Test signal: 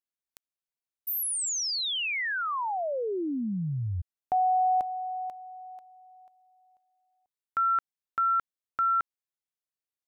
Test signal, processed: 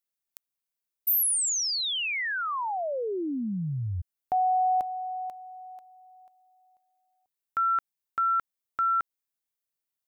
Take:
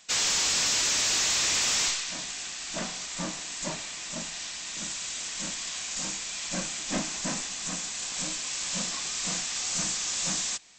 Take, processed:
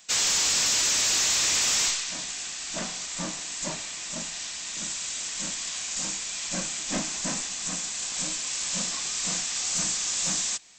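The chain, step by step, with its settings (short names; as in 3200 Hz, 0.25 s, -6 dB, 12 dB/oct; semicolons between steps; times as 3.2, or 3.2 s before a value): high shelf 9700 Hz +9.5 dB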